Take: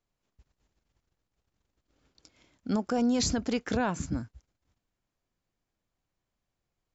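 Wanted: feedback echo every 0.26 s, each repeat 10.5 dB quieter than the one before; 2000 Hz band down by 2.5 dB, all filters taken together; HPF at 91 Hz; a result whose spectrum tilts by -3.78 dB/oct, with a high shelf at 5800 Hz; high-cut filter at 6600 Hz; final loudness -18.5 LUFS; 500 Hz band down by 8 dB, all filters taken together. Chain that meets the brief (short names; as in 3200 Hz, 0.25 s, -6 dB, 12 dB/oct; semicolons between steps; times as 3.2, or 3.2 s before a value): HPF 91 Hz; LPF 6600 Hz; bell 500 Hz -9 dB; bell 2000 Hz -3.5 dB; high shelf 5800 Hz +7 dB; feedback echo 0.26 s, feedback 30%, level -10.5 dB; gain +12.5 dB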